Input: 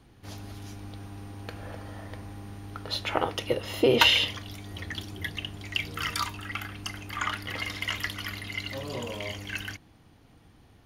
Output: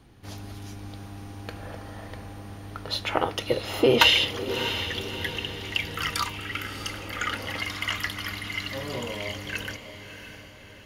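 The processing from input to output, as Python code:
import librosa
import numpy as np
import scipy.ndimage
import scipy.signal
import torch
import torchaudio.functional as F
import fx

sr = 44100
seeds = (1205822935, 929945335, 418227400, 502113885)

y = fx.echo_diffused(x, sr, ms=645, feedback_pct=49, wet_db=-10)
y = fx.spec_repair(y, sr, seeds[0], start_s=6.53, length_s=0.96, low_hz=200.0, high_hz=1200.0, source='both')
y = F.gain(torch.from_numpy(y), 2.0).numpy()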